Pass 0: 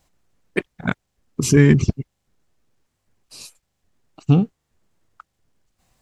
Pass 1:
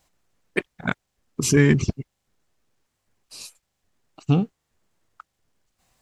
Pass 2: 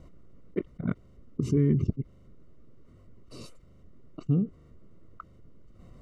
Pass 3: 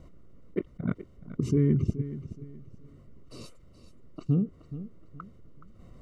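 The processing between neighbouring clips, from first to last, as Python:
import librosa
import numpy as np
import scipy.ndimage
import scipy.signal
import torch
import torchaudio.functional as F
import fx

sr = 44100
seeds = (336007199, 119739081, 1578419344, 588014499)

y1 = fx.low_shelf(x, sr, hz=390.0, db=-5.5)
y2 = np.convolve(y1, np.full(53, 1.0 / 53))[:len(y1)]
y2 = fx.env_flatten(y2, sr, amount_pct=50)
y2 = F.gain(torch.from_numpy(y2), -6.0).numpy()
y3 = fx.echo_feedback(y2, sr, ms=424, feedback_pct=31, wet_db=-14)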